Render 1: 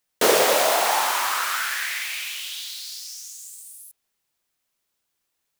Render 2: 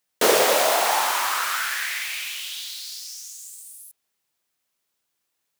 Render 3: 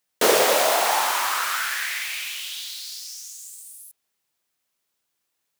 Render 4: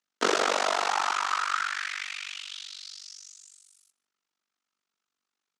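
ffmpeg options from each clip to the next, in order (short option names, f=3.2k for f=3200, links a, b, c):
-af "highpass=f=95:p=1"
-af anull
-af "tremolo=f=48:d=1,highpass=f=170:w=0.5412,highpass=f=170:w=1.3066,equalizer=f=230:t=q:w=4:g=4,equalizer=f=560:t=q:w=4:g=-5,equalizer=f=1.3k:t=q:w=4:g=8,lowpass=f=7k:w=0.5412,lowpass=f=7k:w=1.3066,aecho=1:1:149:0.075,volume=-2.5dB"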